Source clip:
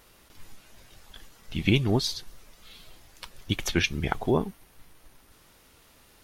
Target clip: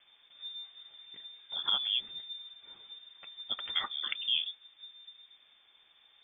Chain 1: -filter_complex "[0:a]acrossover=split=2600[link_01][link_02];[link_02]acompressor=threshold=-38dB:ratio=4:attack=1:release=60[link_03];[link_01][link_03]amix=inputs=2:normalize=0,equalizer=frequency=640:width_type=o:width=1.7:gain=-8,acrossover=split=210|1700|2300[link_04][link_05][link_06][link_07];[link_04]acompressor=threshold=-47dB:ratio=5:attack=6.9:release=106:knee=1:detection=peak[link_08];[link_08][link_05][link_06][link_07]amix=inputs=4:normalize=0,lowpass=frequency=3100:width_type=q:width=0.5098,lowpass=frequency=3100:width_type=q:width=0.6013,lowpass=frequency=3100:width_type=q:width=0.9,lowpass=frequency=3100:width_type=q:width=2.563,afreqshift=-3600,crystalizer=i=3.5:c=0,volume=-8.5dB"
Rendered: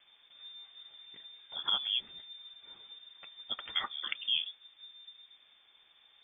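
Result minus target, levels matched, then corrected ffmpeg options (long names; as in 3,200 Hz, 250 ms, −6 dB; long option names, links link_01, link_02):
downward compressor: peak gain reduction +8 dB
-filter_complex "[0:a]acrossover=split=2600[link_01][link_02];[link_02]acompressor=threshold=-38dB:ratio=4:attack=1:release=60[link_03];[link_01][link_03]amix=inputs=2:normalize=0,equalizer=frequency=640:width_type=o:width=1.7:gain=-8,acrossover=split=210|1700|2300[link_04][link_05][link_06][link_07];[link_04]acompressor=threshold=-37dB:ratio=5:attack=6.9:release=106:knee=1:detection=peak[link_08];[link_08][link_05][link_06][link_07]amix=inputs=4:normalize=0,lowpass=frequency=3100:width_type=q:width=0.5098,lowpass=frequency=3100:width_type=q:width=0.6013,lowpass=frequency=3100:width_type=q:width=0.9,lowpass=frequency=3100:width_type=q:width=2.563,afreqshift=-3600,crystalizer=i=3.5:c=0,volume=-8.5dB"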